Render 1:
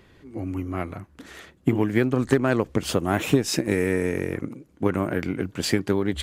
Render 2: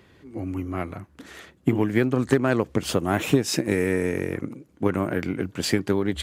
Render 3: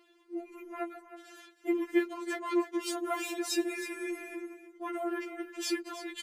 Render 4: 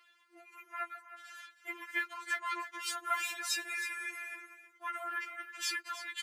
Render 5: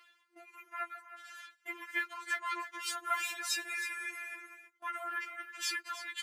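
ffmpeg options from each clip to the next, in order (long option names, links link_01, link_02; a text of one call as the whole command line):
ffmpeg -i in.wav -af "highpass=61" out.wav
ffmpeg -i in.wav -af "lowshelf=frequency=260:gain=-4.5,aecho=1:1:318:0.224,afftfilt=real='re*4*eq(mod(b,16),0)':imag='im*4*eq(mod(b,16),0)':win_size=2048:overlap=0.75,volume=-5dB" out.wav
ffmpeg -i in.wav -af "highpass=frequency=1400:width_type=q:width=2" out.wav
ffmpeg -i in.wav -af "agate=range=-12dB:threshold=-58dB:ratio=16:detection=peak,areverse,acompressor=mode=upward:threshold=-48dB:ratio=2.5,areverse" out.wav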